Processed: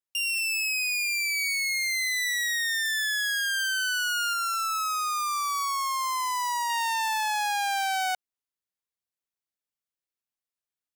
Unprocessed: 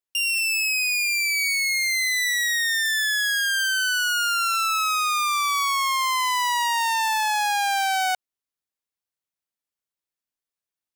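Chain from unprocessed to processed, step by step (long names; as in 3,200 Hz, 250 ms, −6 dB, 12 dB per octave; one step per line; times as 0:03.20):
0:04.33–0:06.70: flat-topped bell 2,800 Hz −8.5 dB 1.1 octaves
level −4.5 dB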